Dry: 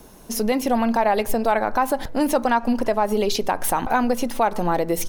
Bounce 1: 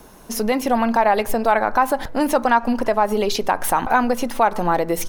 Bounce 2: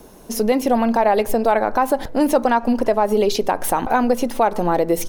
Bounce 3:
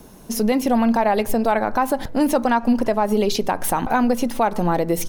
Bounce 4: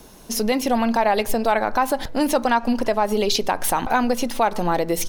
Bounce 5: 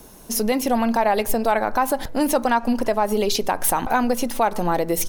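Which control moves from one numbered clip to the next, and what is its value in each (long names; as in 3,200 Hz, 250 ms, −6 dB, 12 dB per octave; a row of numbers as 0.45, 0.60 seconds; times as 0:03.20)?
parametric band, centre frequency: 1,300, 440, 170, 4,100, 15,000 Hertz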